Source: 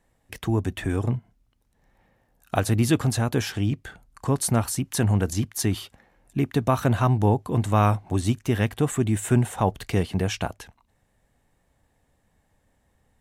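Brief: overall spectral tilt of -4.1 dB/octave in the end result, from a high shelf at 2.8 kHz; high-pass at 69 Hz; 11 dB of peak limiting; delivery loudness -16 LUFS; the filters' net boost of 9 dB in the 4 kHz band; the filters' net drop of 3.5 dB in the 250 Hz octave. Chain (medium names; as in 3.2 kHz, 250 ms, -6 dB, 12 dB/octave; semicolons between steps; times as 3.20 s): high-pass 69 Hz; peaking EQ 250 Hz -4.5 dB; treble shelf 2.8 kHz +5.5 dB; peaking EQ 4 kHz +7 dB; trim +10 dB; peak limiter -3 dBFS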